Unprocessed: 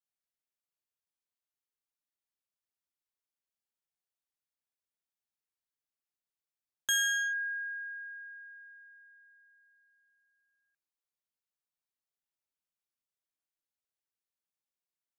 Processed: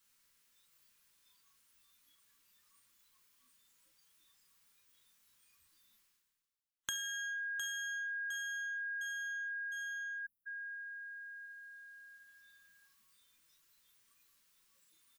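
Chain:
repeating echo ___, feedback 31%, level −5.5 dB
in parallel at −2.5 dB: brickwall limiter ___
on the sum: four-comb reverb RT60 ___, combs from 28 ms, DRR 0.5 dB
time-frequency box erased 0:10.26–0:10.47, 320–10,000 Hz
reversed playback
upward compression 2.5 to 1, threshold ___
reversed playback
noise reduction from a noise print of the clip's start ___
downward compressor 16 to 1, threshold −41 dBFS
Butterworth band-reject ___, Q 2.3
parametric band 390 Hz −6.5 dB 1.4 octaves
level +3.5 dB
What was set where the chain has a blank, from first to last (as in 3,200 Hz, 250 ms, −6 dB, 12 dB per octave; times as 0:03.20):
708 ms, −35 dBFS, 0.36 s, −38 dBFS, 16 dB, 710 Hz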